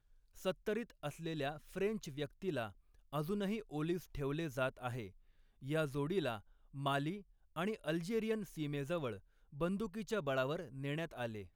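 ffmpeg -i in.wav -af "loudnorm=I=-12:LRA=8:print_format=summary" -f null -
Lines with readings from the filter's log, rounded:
Input Integrated:    -40.5 LUFS
Input True Peak:     -23.4 dBTP
Input LRA:             1.2 LU
Input Threshold:     -50.8 LUFS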